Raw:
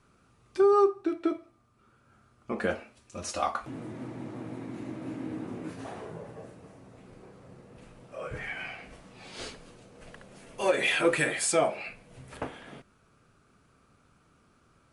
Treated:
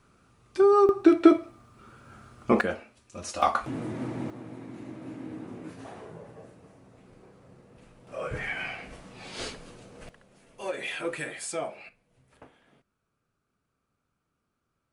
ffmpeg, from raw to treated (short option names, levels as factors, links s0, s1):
-af "asetnsamples=n=441:p=0,asendcmd='0.89 volume volume 12dB;2.61 volume volume -1dB;3.42 volume volume 6dB;4.3 volume volume -3dB;8.07 volume volume 4dB;10.09 volume volume -8dB;11.89 volume volume -16dB',volume=1.26"